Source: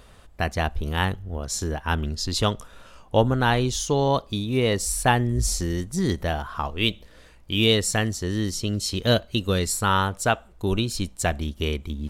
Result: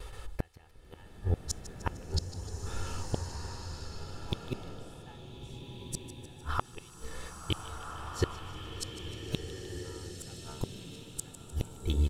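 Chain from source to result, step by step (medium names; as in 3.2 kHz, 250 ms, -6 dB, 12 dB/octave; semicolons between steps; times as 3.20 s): gate with hold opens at -40 dBFS; bass shelf 65 Hz +3.5 dB; comb 2.3 ms, depth 71%; de-hum 75.4 Hz, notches 25; inverted gate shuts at -18 dBFS, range -41 dB; on a send: feedback echo behind a high-pass 152 ms, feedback 57%, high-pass 3 kHz, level -13.5 dB; on the sum: swelling reverb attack 1630 ms, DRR 2.5 dB; trim +2.5 dB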